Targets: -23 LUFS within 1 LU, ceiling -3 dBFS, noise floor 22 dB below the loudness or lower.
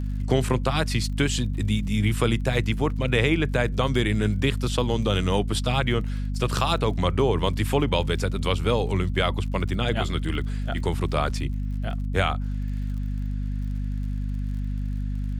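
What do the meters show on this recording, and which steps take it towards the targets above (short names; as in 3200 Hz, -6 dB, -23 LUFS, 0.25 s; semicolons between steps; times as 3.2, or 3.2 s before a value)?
ticks 48/s; hum 50 Hz; harmonics up to 250 Hz; hum level -25 dBFS; loudness -25.5 LUFS; peak -7.5 dBFS; loudness target -23.0 LUFS
-> de-click; notches 50/100/150/200/250 Hz; gain +2.5 dB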